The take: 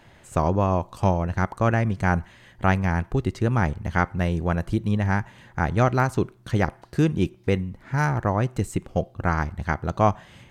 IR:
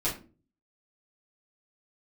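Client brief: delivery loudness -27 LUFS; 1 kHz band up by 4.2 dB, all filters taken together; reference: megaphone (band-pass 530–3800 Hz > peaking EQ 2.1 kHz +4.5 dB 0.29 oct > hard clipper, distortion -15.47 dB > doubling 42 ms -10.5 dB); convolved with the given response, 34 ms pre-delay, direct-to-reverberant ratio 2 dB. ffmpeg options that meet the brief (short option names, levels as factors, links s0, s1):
-filter_complex "[0:a]equalizer=f=1000:t=o:g=6,asplit=2[s0][s1];[1:a]atrim=start_sample=2205,adelay=34[s2];[s1][s2]afir=irnorm=-1:irlink=0,volume=0.335[s3];[s0][s3]amix=inputs=2:normalize=0,highpass=530,lowpass=3800,equalizer=f=2100:t=o:w=0.29:g=4.5,asoftclip=type=hard:threshold=0.299,asplit=2[s4][s5];[s5]adelay=42,volume=0.299[s6];[s4][s6]amix=inputs=2:normalize=0,volume=0.668"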